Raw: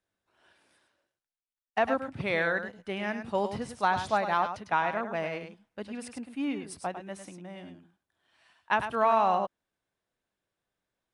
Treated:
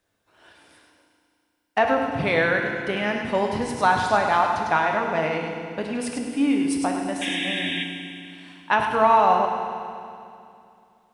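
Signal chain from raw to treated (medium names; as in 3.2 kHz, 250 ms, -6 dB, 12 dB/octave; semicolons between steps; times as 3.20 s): in parallel at +2.5 dB: compression, threshold -38 dBFS, peak gain reduction 17 dB; on the sum: painted sound noise, 7.21–7.84 s, 1.6–3.8 kHz -33 dBFS; FDN reverb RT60 2.5 s, low-frequency decay 1.25×, high-frequency decay 1×, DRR 2.5 dB; trim +3.5 dB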